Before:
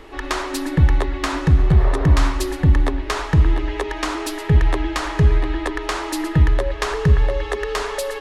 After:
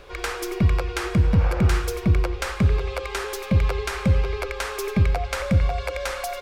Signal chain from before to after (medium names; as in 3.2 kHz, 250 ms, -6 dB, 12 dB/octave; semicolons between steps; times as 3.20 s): tape speed +28%; trim -4.5 dB